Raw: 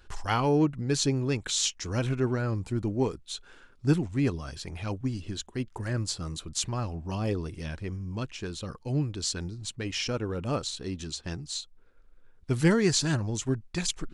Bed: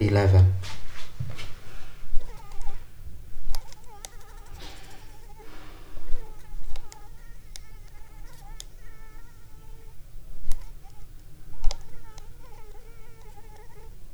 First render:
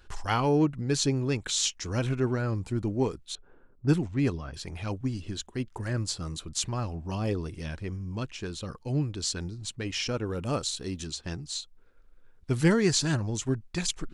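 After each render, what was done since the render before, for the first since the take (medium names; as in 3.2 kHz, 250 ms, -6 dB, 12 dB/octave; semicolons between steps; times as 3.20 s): 3.35–4.54 s: level-controlled noise filter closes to 640 Hz, open at -21 dBFS; 10.26–11.07 s: treble shelf 8.4 kHz +11.5 dB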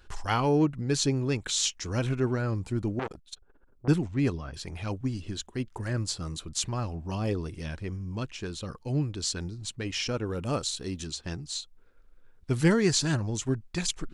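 2.99–3.88 s: transformer saturation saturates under 1.7 kHz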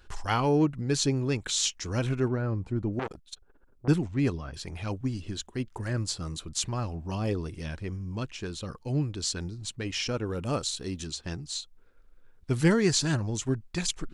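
2.28–2.93 s: low-pass 1.3 kHz 6 dB/octave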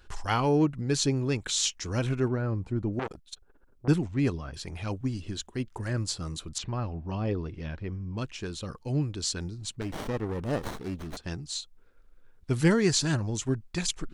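6.58–8.18 s: distance through air 200 m; 9.81–11.17 s: sliding maximum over 17 samples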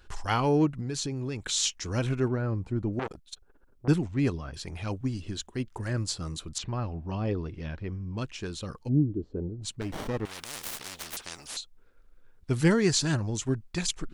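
0.79–1.43 s: compression 10:1, threshold -28 dBFS; 8.87–9.61 s: resonant low-pass 230 Hz -> 580 Hz, resonance Q 2.8; 10.25–11.57 s: spectrum-flattening compressor 10:1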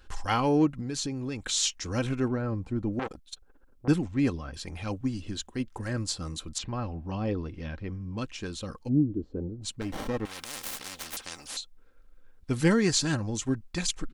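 comb 3.8 ms, depth 32%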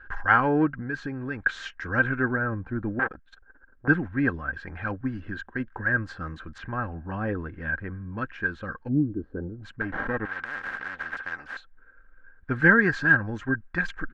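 resonant low-pass 1.6 kHz, resonance Q 11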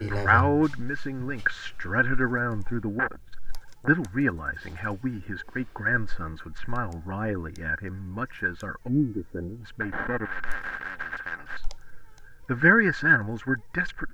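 add bed -9 dB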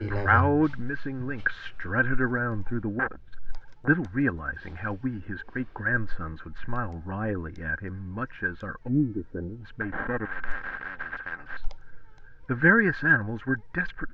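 distance through air 210 m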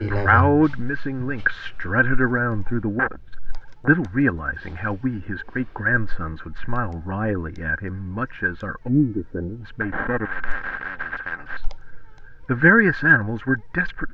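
trim +6 dB; peak limiter -3 dBFS, peak gain reduction 2 dB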